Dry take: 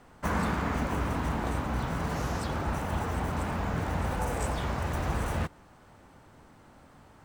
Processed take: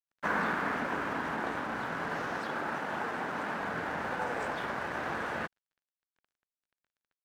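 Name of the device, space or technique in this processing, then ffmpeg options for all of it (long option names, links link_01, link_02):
pocket radio on a weak battery: -filter_complex "[0:a]highpass=270,lowpass=3600,aeval=exprs='sgn(val(0))*max(abs(val(0))-0.00355,0)':channel_layout=same,equalizer=frequency=1600:width_type=o:width=0.5:gain=7.5,asettb=1/sr,asplit=3[link_01][link_02][link_03];[link_01]atrim=end=2.384[link_04];[link_02]atrim=start=2.38:end=3.61,asetpts=PTS-STARTPTS,afade=type=in:duration=0.004:curve=qsin,afade=type=out:start_time=1.226:duration=0.004:curve=qsin,highpass=110[link_05];[link_03]atrim=start=3.606[link_06];[link_04][link_05]acrossfade=duration=0.004:curve1=hsin:curve2=qsin[link_07];[link_07][link_06]acrossfade=duration=0.004:curve1=qsin:curve2=hsin"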